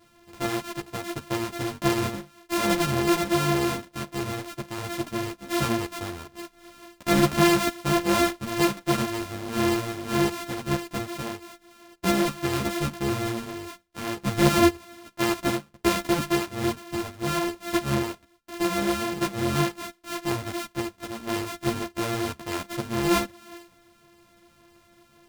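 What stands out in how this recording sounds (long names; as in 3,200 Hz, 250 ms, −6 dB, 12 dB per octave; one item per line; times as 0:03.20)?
a buzz of ramps at a fixed pitch in blocks of 128 samples
a shimmering, thickened sound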